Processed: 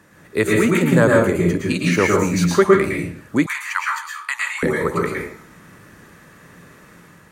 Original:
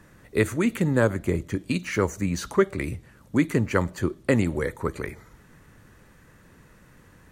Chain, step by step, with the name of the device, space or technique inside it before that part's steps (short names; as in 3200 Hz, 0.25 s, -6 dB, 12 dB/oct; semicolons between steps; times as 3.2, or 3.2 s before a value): far laptop microphone (reverb RT60 0.50 s, pre-delay 0.106 s, DRR -2 dB; HPF 200 Hz 6 dB/oct; AGC gain up to 3.5 dB); 3.46–4.63 elliptic high-pass 960 Hz, stop band 50 dB; gain +3 dB